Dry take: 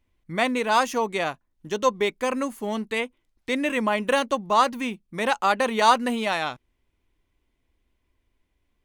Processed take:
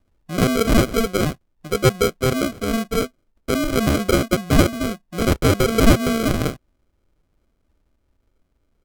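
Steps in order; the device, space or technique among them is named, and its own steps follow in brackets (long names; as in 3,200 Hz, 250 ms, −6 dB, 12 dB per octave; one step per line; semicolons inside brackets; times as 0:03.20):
crushed at another speed (tape speed factor 1.25×; decimation without filtering 39×; tape speed factor 0.8×)
level +5.5 dB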